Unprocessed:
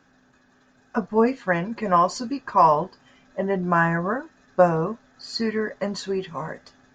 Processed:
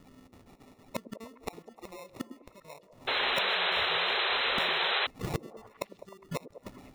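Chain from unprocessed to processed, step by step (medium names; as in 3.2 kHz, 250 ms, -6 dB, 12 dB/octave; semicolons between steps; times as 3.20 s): random holes in the spectrogram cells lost 28%; in parallel at -2 dB: compression, threshold -29 dBFS, peak gain reduction 15.5 dB; on the sum: sample-and-hold 28×; inverted gate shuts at -22 dBFS, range -30 dB; on a send: repeats whose band climbs or falls 102 ms, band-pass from 320 Hz, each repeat 0.7 oct, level -7 dB; on the sum: painted sound noise, 3.07–5.07 s, 350–4100 Hz -29 dBFS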